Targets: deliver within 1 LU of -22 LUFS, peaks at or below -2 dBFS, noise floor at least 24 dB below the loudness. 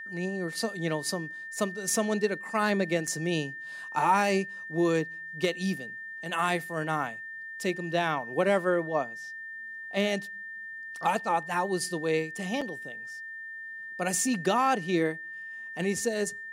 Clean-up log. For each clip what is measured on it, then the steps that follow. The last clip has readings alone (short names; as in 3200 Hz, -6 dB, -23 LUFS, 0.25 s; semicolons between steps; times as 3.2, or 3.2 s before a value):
dropouts 2; longest dropout 5.3 ms; steady tone 1800 Hz; tone level -38 dBFS; loudness -30.0 LUFS; peak -12.5 dBFS; loudness target -22.0 LUFS
-> interpolate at 3.07/12.61, 5.3 ms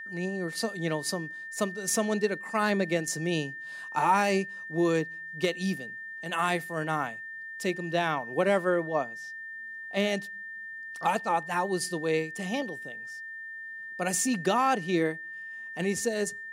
dropouts 0; steady tone 1800 Hz; tone level -38 dBFS
-> notch 1800 Hz, Q 30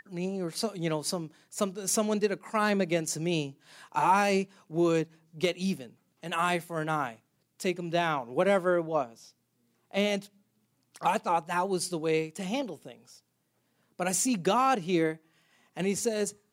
steady tone none; loudness -29.5 LUFS; peak -13.0 dBFS; loudness target -22.0 LUFS
-> gain +7.5 dB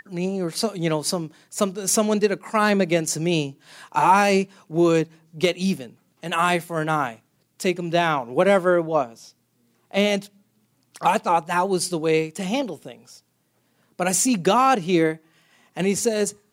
loudness -22.0 LUFS; peak -5.5 dBFS; noise floor -67 dBFS